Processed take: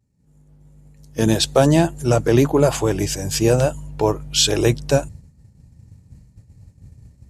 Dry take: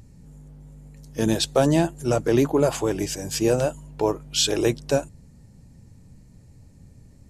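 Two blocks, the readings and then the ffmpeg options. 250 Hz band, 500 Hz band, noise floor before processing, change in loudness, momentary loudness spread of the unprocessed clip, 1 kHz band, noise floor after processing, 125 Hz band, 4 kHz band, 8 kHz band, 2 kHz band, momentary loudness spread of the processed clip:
+4.0 dB, +4.0 dB, −50 dBFS, +4.5 dB, 7 LU, +4.5 dB, −55 dBFS, +7.5 dB, +5.0 dB, +5.0 dB, +5.0 dB, 7 LU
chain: -af "asubboost=boost=3:cutoff=140,agate=range=-33dB:threshold=-34dB:ratio=3:detection=peak,highpass=58,volume=5dB"

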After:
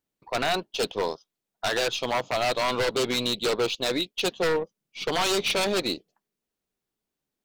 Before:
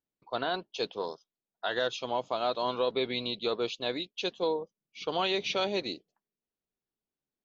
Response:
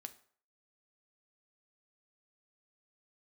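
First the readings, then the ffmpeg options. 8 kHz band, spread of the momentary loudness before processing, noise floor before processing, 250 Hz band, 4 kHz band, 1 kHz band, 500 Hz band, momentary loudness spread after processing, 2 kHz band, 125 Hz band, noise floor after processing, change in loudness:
can't be measured, 9 LU, below −85 dBFS, +6.0 dB, +6.5 dB, +4.5 dB, +4.5 dB, 8 LU, +8.0 dB, +8.5 dB, below −85 dBFS, +5.5 dB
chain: -af "aeval=exprs='0.0447*(abs(mod(val(0)/0.0447+3,4)-2)-1)':channel_layout=same,aeval=exprs='0.0473*(cos(1*acos(clip(val(0)/0.0473,-1,1)))-cos(1*PI/2))+0.00106*(cos(7*acos(clip(val(0)/0.0473,-1,1)))-cos(7*PI/2))+0.00133*(cos(8*acos(clip(val(0)/0.0473,-1,1)))-cos(8*PI/2))':channel_layout=same,volume=8.5dB"

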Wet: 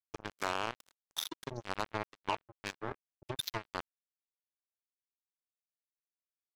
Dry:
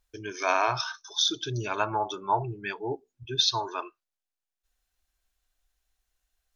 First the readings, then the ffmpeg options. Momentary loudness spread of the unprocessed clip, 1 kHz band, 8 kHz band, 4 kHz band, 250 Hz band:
11 LU, −11.0 dB, −12.0 dB, −14.0 dB, −8.0 dB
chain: -af "highshelf=frequency=2000:gain=-10,acompressor=threshold=-44dB:ratio=4,acrusher=bits=5:mix=0:aa=0.5,volume=9.5dB"

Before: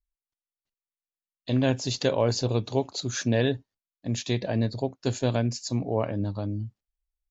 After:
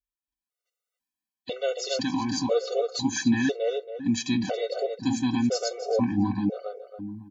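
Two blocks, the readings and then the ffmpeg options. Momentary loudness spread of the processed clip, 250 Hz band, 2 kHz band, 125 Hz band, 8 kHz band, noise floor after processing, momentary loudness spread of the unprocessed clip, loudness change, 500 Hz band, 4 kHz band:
13 LU, +3.5 dB, +1.5 dB, −8.0 dB, can't be measured, below −85 dBFS, 8 LU, +1.0 dB, +0.5 dB, +0.5 dB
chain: -filter_complex "[0:a]asplit=2[link_01][link_02];[link_02]alimiter=limit=-20dB:level=0:latency=1:release=145,volume=-1dB[link_03];[link_01][link_03]amix=inputs=2:normalize=0,highpass=77,aecho=1:1:4:0.71,asplit=2[link_04][link_05];[link_05]adelay=277,lowpass=frequency=1900:poles=1,volume=-3dB,asplit=2[link_06][link_07];[link_07]adelay=277,lowpass=frequency=1900:poles=1,volume=0.3,asplit=2[link_08][link_09];[link_09]adelay=277,lowpass=frequency=1900:poles=1,volume=0.3,asplit=2[link_10][link_11];[link_11]adelay=277,lowpass=frequency=1900:poles=1,volume=0.3[link_12];[link_06][link_08][link_10][link_12]amix=inputs=4:normalize=0[link_13];[link_04][link_13]amix=inputs=2:normalize=0,dynaudnorm=framelen=110:gausssize=11:maxgain=14dB,afftfilt=real='re*gt(sin(2*PI*1*pts/sr)*(1-2*mod(floor(b*sr/1024/380),2)),0)':imag='im*gt(sin(2*PI*1*pts/sr)*(1-2*mod(floor(b*sr/1024/380),2)),0)':win_size=1024:overlap=0.75,volume=-9dB"

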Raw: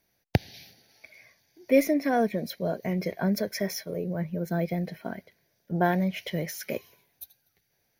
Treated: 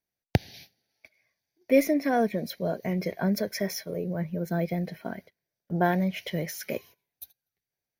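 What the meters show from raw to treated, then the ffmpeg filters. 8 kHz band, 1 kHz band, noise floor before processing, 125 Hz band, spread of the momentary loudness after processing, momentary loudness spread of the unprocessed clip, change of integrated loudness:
0.0 dB, 0.0 dB, −74 dBFS, 0.0 dB, 15 LU, 15 LU, 0.0 dB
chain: -af "agate=range=-17dB:threshold=-48dB:ratio=16:detection=peak"

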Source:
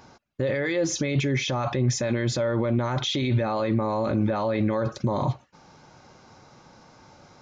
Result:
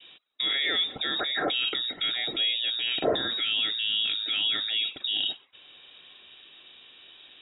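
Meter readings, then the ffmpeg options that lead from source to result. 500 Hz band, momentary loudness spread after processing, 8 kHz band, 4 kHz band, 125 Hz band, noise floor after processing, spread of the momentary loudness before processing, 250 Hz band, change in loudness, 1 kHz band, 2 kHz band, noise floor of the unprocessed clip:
−9.5 dB, 3 LU, below −40 dB, +12.0 dB, −27.0 dB, −55 dBFS, 3 LU, −15.0 dB, −0.5 dB, −7.5 dB, +2.0 dB, −55 dBFS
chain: -filter_complex "[0:a]adynamicequalizer=threshold=0.00447:dfrequency=2700:dqfactor=2.8:tfrequency=2700:tqfactor=2.8:attack=5:release=100:ratio=0.375:range=1.5:mode=cutabove:tftype=bell,acrossover=split=510|1600[link_01][link_02][link_03];[link_01]acompressor=threshold=-32dB:ratio=6[link_04];[link_04][link_02][link_03]amix=inputs=3:normalize=0,lowpass=frequency=3300:width_type=q:width=0.5098,lowpass=frequency=3300:width_type=q:width=0.6013,lowpass=frequency=3300:width_type=q:width=0.9,lowpass=frequency=3300:width_type=q:width=2.563,afreqshift=-3900,equalizer=frequency=310:width=0.55:gain=14.5"

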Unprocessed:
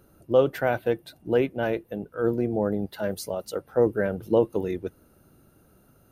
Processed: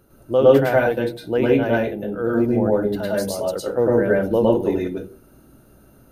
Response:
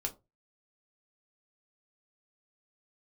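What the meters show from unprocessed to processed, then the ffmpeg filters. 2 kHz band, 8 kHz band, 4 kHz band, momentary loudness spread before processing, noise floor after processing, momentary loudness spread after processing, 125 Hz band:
+7.5 dB, +6.5 dB, +6.5 dB, 9 LU, −52 dBFS, 10 LU, +7.0 dB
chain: -filter_complex "[0:a]asplit=2[link_01][link_02];[1:a]atrim=start_sample=2205,asetrate=28665,aresample=44100,adelay=106[link_03];[link_02][link_03]afir=irnorm=-1:irlink=0,volume=0.5dB[link_04];[link_01][link_04]amix=inputs=2:normalize=0,volume=1dB"

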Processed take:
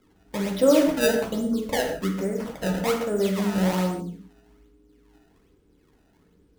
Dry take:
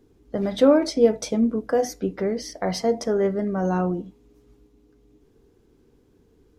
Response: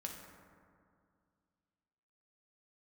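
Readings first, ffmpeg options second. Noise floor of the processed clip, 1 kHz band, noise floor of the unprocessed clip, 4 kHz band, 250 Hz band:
−62 dBFS, −1.5 dB, −60 dBFS, +2.0 dB, −1.0 dB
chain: -filter_complex "[0:a]bandreject=frequency=88.76:width_type=h:width=4,bandreject=frequency=177.52:width_type=h:width=4,bandreject=frequency=266.28:width_type=h:width=4,acrusher=samples=23:mix=1:aa=0.000001:lfo=1:lforange=36.8:lforate=1.2[link_01];[1:a]atrim=start_sample=2205,afade=type=out:start_time=0.23:duration=0.01,atrim=end_sample=10584[link_02];[link_01][link_02]afir=irnorm=-1:irlink=0"

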